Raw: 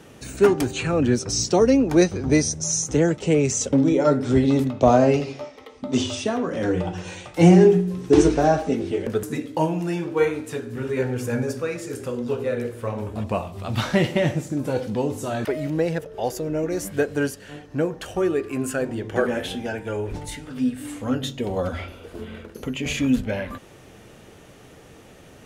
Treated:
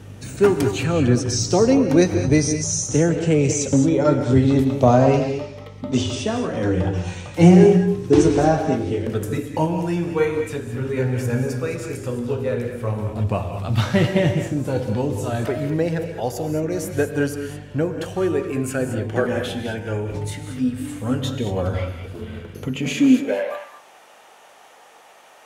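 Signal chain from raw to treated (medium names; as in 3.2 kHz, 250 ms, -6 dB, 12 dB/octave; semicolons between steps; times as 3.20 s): gated-style reverb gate 240 ms rising, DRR 6.5 dB; hum 50 Hz, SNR 20 dB; high-pass sweep 97 Hz -> 810 Hz, 22.60–23.65 s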